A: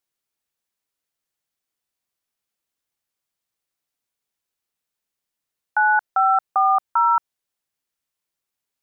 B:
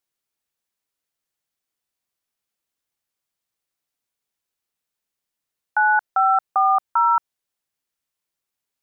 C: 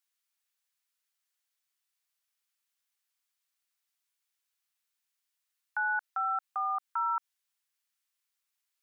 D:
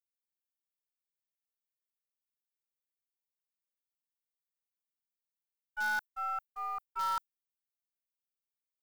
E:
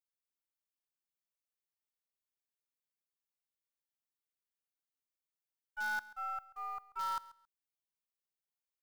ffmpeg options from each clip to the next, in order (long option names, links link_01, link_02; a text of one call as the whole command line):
ffmpeg -i in.wav -af anull out.wav
ffmpeg -i in.wav -af "alimiter=limit=-20dB:level=0:latency=1:release=60,highpass=1200" out.wav
ffmpeg -i in.wav -filter_complex "[0:a]agate=range=-33dB:threshold=-24dB:ratio=3:detection=peak,aemphasis=mode=production:type=riaa,asplit=2[link_01][link_02];[link_02]acrusher=bits=6:dc=4:mix=0:aa=0.000001,volume=-7.5dB[link_03];[link_01][link_03]amix=inputs=2:normalize=0" out.wav
ffmpeg -i in.wav -af "aecho=1:1:136|272:0.106|0.0201,volume=-4dB" out.wav